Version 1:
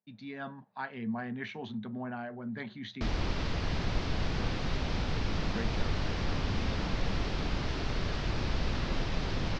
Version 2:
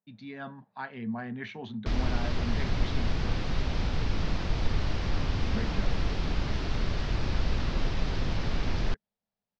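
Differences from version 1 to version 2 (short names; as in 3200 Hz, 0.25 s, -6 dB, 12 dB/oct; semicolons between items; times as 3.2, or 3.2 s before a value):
background: entry -1.15 s; master: add low shelf 85 Hz +6 dB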